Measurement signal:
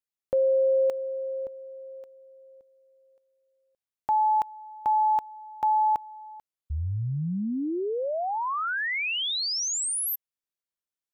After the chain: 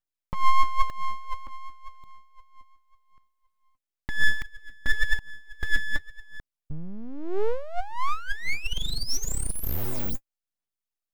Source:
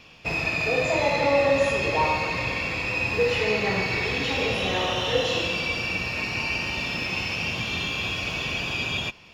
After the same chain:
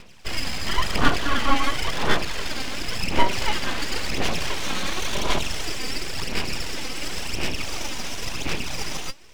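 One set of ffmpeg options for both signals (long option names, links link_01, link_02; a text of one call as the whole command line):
ffmpeg -i in.wav -af "aphaser=in_gain=1:out_gain=1:delay=3.9:decay=0.69:speed=0.94:type=sinusoidal,aeval=exprs='abs(val(0))':channel_layout=same,lowshelf=frequency=350:gain=3.5,volume=-2dB" out.wav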